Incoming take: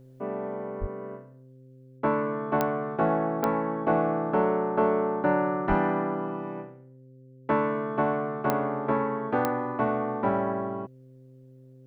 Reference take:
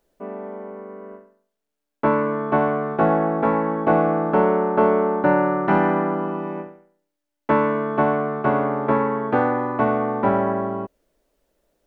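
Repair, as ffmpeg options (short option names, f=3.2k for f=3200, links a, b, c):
-filter_complex "[0:a]adeclick=t=4,bandreject=f=130:t=h:w=4,bandreject=f=260:t=h:w=4,bandreject=f=390:t=h:w=4,bandreject=f=520:t=h:w=4,asplit=3[a][b][c];[a]afade=t=out:st=0.8:d=0.02[d];[b]highpass=f=140:w=0.5412,highpass=f=140:w=1.3066,afade=t=in:st=0.8:d=0.02,afade=t=out:st=0.92:d=0.02[e];[c]afade=t=in:st=0.92:d=0.02[f];[d][e][f]amix=inputs=3:normalize=0,asplit=3[g][h][i];[g]afade=t=out:st=5.68:d=0.02[j];[h]highpass=f=140:w=0.5412,highpass=f=140:w=1.3066,afade=t=in:st=5.68:d=0.02,afade=t=out:st=5.8:d=0.02[k];[i]afade=t=in:st=5.8:d=0.02[l];[j][k][l]amix=inputs=3:normalize=0,asetnsamples=n=441:p=0,asendcmd='1.99 volume volume 6.5dB',volume=0dB"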